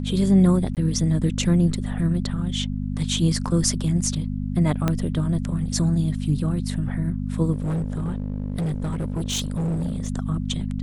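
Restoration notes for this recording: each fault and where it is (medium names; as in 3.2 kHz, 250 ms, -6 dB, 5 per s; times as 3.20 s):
hum 50 Hz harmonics 5 -27 dBFS
0.75–0.77 s: dropout 18 ms
4.88 s: pop -9 dBFS
7.52–10.08 s: clipped -21.5 dBFS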